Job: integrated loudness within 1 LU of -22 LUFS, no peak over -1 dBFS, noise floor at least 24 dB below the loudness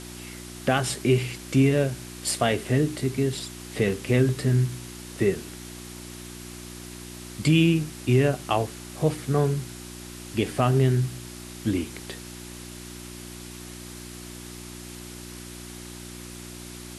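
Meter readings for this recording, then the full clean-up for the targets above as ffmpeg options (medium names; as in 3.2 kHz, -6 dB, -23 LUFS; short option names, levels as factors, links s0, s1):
hum 60 Hz; highest harmonic 360 Hz; hum level -41 dBFS; noise floor -41 dBFS; noise floor target -49 dBFS; loudness -25.0 LUFS; peak level -7.5 dBFS; loudness target -22.0 LUFS
-> -af "bandreject=f=60:t=h:w=4,bandreject=f=120:t=h:w=4,bandreject=f=180:t=h:w=4,bandreject=f=240:t=h:w=4,bandreject=f=300:t=h:w=4,bandreject=f=360:t=h:w=4"
-af "afftdn=nr=8:nf=-41"
-af "volume=1.41"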